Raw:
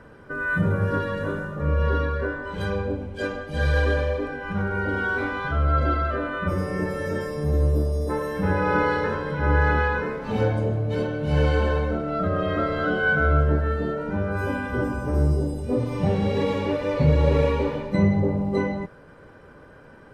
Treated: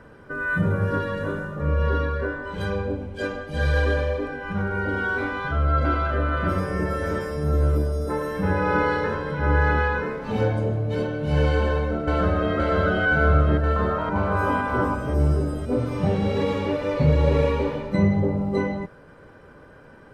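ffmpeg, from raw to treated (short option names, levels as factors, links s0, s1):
-filter_complex "[0:a]asplit=2[s0][s1];[s1]afade=t=in:st=5.25:d=0.01,afade=t=out:st=6:d=0.01,aecho=0:1:590|1180|1770|2360|2950|3540|4130|4720:0.562341|0.337405|0.202443|0.121466|0.0728794|0.0437277|0.0262366|0.015742[s2];[s0][s2]amix=inputs=2:normalize=0,asplit=2[s3][s4];[s4]afade=t=in:st=11.55:d=0.01,afade=t=out:st=12.53:d=0.01,aecho=0:1:520|1040|1560|2080|2600|3120|3640|4160|4680|5200|5720|6240:0.794328|0.595746|0.44681|0.335107|0.25133|0.188498|0.141373|0.10603|0.0795225|0.0596419|0.0447314|0.0335486[s5];[s3][s5]amix=inputs=2:normalize=0,asettb=1/sr,asplit=3[s6][s7][s8];[s6]atrim=end=13.764[s9];[s7]atrim=start=13.76:end=14.95,asetpts=PTS-STARTPTS,afade=t=in:d=0.004:c=qsin,afade=t=out:st=1.186:d=0.004:c=qsin,equalizer=f=980:t=o:w=0.58:g=12.5[s10];[s8]atrim=start=14.946[s11];[s9][s10]acrossfade=d=0.004:c1=hsin:c2=qsin[s12];[s12][s11]acrossfade=d=0.004:c1=qsin:c2=hsin"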